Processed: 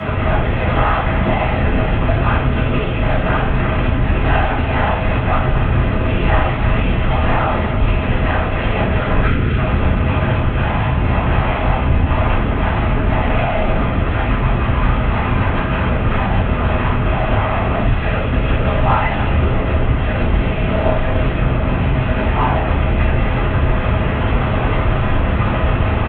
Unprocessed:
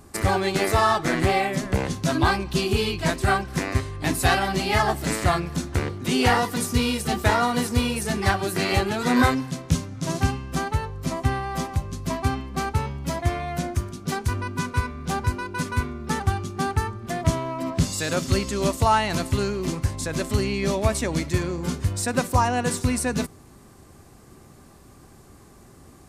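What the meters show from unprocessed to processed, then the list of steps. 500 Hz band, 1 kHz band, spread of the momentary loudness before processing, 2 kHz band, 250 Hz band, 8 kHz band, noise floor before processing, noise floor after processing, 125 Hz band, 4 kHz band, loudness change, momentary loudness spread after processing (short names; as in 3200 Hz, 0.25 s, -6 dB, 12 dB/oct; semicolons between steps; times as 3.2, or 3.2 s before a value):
+6.5 dB, +5.5 dB, 7 LU, +6.5 dB, +6.0 dB, under -40 dB, -49 dBFS, -19 dBFS, +10.5 dB, +0.5 dB, +7.0 dB, 2 LU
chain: delta modulation 16 kbps, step -16.5 dBFS; in parallel at -2 dB: level quantiser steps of 23 dB; on the sum: LPC vocoder at 8 kHz whisper; spectral delete 9.22–9.57, 510–1200 Hz; frequency shift +22 Hz; on a send: feedback echo 0.3 s, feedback 54%, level -13 dB; on the sum: shoebox room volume 430 m³, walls furnished, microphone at 6.7 m; gain -11.5 dB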